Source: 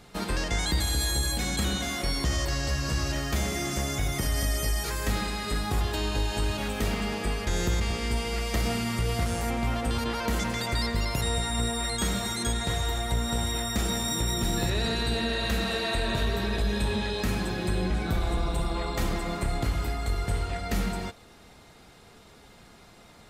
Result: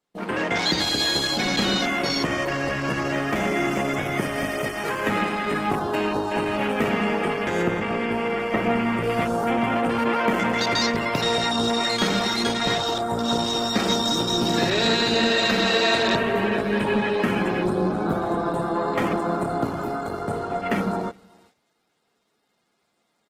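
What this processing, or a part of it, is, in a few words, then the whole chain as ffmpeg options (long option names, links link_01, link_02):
video call: -filter_complex "[0:a]afwtdn=0.0178,highpass=200,asettb=1/sr,asplit=3[link_01][link_02][link_03];[link_01]atrim=end=7.624[link_04];[link_02]atrim=start=7.62:end=9.03,asetpts=PTS-STARTPTS,afade=type=in:duration=0.004:curve=qsin,afade=type=out:start_time=1.406:duration=0.004:curve=qsin,acrossover=split=2800[link_05][link_06];[link_06]acompressor=threshold=-54dB:ratio=4:attack=1:release=60[link_07];[link_05][link_07]amix=inputs=2:normalize=0[link_08];[link_03]atrim=start=9.026[link_09];[link_04][link_08]acrossfade=duration=0.004:curve1=hsin:curve2=qsin[link_10];[link_10][link_09]acrossfade=duration=0.004:curve1=qsin:curve2=hsin,highpass=100,asplit=2[link_11][link_12];[link_12]adelay=373.2,volume=-28dB,highshelf=frequency=4000:gain=-8.4[link_13];[link_11][link_13]amix=inputs=2:normalize=0,dynaudnorm=framelen=180:gausssize=3:maxgain=10dB,agate=range=-11dB:threshold=-57dB:ratio=16:detection=peak" -ar 48000 -c:a libopus -b:a 16k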